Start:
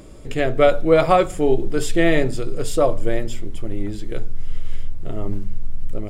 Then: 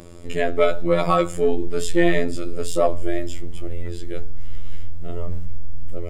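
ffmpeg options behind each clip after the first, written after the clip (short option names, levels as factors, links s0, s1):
-filter_complex "[0:a]afftfilt=real='hypot(re,im)*cos(PI*b)':imag='0':win_size=2048:overlap=0.75,asplit=2[s0][s1];[s1]asoftclip=type=tanh:threshold=0.106,volume=0.631[s2];[s0][s2]amix=inputs=2:normalize=0"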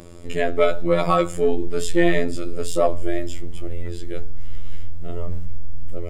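-af anull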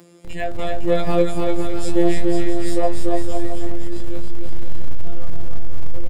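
-filter_complex "[0:a]afftfilt=real='hypot(re,im)*cos(PI*b)':imag='0':win_size=1024:overlap=0.75,acrossover=split=110|920[s0][s1][s2];[s0]acrusher=bits=5:mix=0:aa=0.000001[s3];[s3][s1][s2]amix=inputs=3:normalize=0,aecho=1:1:290|507.5|670.6|793|884.7:0.631|0.398|0.251|0.158|0.1"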